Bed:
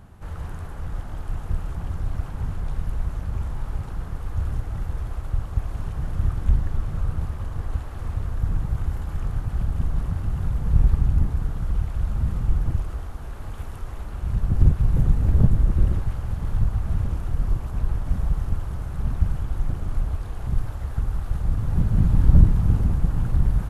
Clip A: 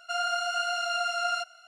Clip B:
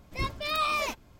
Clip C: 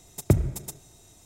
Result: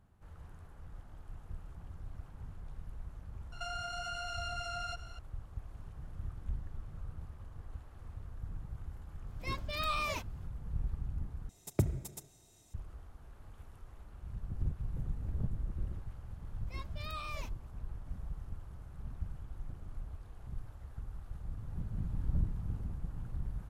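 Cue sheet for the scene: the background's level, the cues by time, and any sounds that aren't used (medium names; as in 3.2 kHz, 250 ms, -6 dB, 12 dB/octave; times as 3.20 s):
bed -19 dB
3.52 s: add A -1 dB + compression, threshold -37 dBFS
9.28 s: add B -7 dB
11.49 s: replace with C -9.5 dB
16.55 s: add B -15.5 dB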